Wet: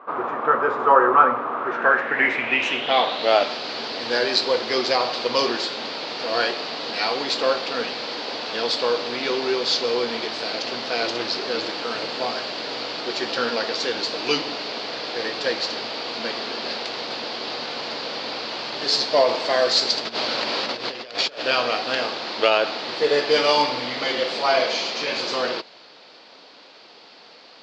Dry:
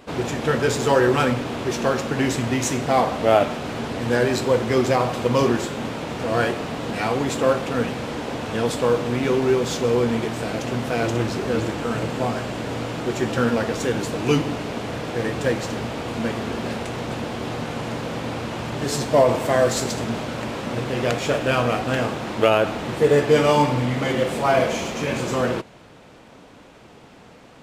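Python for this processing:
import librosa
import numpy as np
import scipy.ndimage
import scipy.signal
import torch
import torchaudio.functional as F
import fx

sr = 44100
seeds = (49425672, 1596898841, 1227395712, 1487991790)

y = fx.over_compress(x, sr, threshold_db=-28.0, ratio=-0.5, at=(19.97, 21.4), fade=0.02)
y = scipy.signal.sosfilt(scipy.signal.butter(2, 6300.0, 'lowpass', fs=sr, output='sos'), y)
y = fx.filter_sweep_lowpass(y, sr, from_hz=1200.0, to_hz=4600.0, start_s=1.54, end_s=3.37, q=6.1)
y = scipy.signal.sosfilt(scipy.signal.butter(2, 420.0, 'highpass', fs=sr, output='sos'), y)
y = fx.peak_eq(y, sr, hz=4300.0, db=2.5, octaves=1.6)
y = F.gain(torch.from_numpy(y), -1.0).numpy()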